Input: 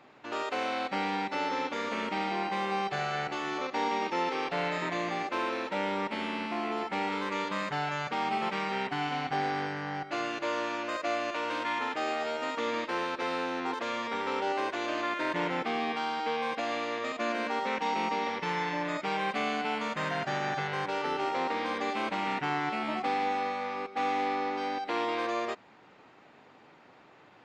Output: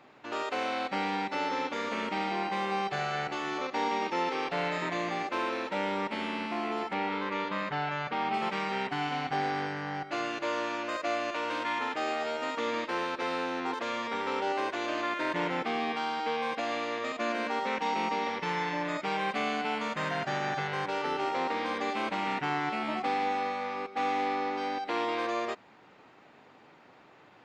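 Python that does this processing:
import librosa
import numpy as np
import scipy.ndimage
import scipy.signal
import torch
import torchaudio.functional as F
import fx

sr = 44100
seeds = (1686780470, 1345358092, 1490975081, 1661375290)

y = fx.lowpass(x, sr, hz=3900.0, slope=12, at=(6.93, 8.34))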